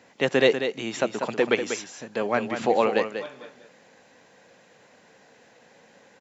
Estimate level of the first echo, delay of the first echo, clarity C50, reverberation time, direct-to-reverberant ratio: -8.0 dB, 192 ms, no reverb, no reverb, no reverb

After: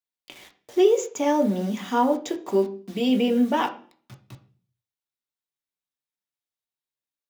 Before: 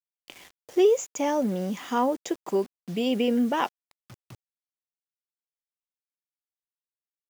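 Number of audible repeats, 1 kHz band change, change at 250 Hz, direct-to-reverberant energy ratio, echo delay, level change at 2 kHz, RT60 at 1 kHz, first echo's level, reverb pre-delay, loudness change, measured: no echo, +3.0 dB, +3.5 dB, 3.0 dB, no echo, +2.0 dB, 0.40 s, no echo, 3 ms, +3.0 dB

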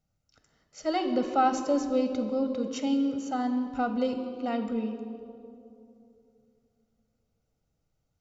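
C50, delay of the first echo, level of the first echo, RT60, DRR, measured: 8.0 dB, no echo, no echo, 2.8 s, 6.5 dB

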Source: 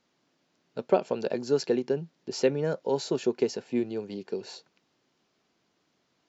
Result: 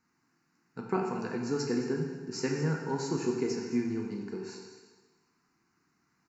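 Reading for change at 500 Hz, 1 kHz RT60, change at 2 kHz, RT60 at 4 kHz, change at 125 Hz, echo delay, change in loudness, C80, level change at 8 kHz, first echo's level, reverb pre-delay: -7.0 dB, 1.3 s, +1.0 dB, 1.3 s, +3.0 dB, 216 ms, -3.5 dB, 4.5 dB, no reading, -14.5 dB, 5 ms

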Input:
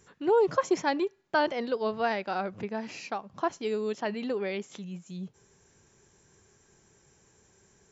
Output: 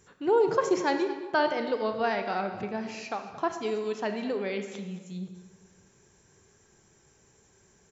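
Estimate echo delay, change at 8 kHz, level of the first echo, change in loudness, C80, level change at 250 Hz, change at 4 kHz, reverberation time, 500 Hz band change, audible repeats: 224 ms, no reading, -16.5 dB, +1.0 dB, 9.0 dB, +1.0 dB, +0.5 dB, 1.4 s, +1.0 dB, 1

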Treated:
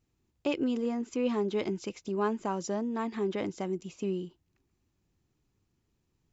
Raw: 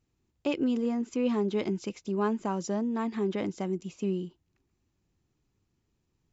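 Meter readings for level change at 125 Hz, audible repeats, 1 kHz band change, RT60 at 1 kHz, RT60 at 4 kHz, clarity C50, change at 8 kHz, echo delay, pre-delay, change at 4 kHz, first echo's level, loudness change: -3.5 dB, no echo, 0.0 dB, no reverb, no reverb, no reverb, no reading, no echo, no reverb, 0.0 dB, no echo, -2.0 dB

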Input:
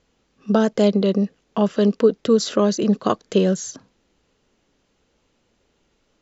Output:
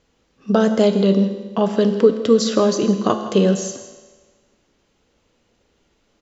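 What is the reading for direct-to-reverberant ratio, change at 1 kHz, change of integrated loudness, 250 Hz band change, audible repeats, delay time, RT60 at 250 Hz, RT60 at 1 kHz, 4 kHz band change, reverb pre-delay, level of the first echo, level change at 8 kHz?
6.5 dB, +2.5 dB, +2.0 dB, +1.5 dB, 1, 164 ms, 1.4 s, 1.4 s, +2.5 dB, 6 ms, -16.5 dB, no reading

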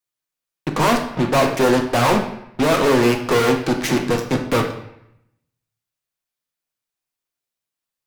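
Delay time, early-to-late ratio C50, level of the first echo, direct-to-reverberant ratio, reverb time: no echo, 7.5 dB, no echo, 2.0 dB, 0.80 s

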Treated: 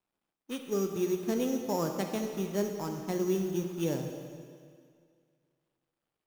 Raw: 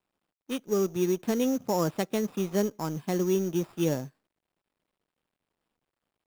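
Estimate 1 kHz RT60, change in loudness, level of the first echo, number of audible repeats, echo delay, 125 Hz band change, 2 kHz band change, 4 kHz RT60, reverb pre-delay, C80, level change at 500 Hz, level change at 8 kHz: 2.1 s, -3.5 dB, no echo, no echo, no echo, -4.0 dB, -3.5 dB, 1.9 s, 7 ms, 6.5 dB, -3.5 dB, -4.0 dB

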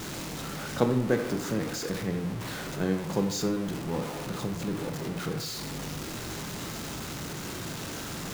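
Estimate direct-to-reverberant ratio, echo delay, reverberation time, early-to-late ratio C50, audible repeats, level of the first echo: 5.0 dB, no echo, 0.70 s, 9.0 dB, no echo, no echo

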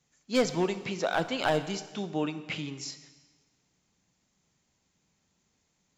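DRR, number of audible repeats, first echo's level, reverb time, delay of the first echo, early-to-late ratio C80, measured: 10.5 dB, no echo, no echo, 1.4 s, no echo, 13.5 dB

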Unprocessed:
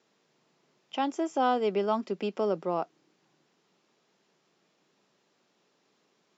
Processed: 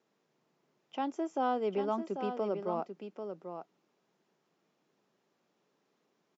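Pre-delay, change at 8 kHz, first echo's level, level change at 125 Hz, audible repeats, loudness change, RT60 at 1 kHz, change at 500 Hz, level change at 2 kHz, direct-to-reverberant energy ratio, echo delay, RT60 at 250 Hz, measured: no reverb, no reading, -8.0 dB, -4.0 dB, 1, -5.5 dB, no reverb, -4.5 dB, -7.0 dB, no reverb, 791 ms, no reverb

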